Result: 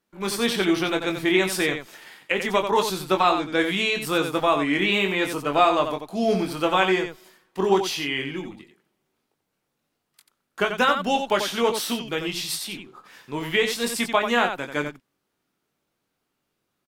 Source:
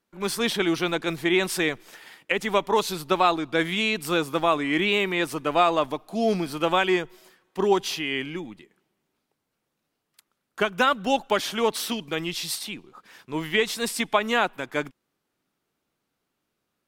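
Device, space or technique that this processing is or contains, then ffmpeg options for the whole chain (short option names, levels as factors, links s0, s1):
slapback doubling: -filter_complex "[0:a]asplit=3[s0][s1][s2];[s1]adelay=21,volume=0.501[s3];[s2]adelay=89,volume=0.422[s4];[s0][s3][s4]amix=inputs=3:normalize=0"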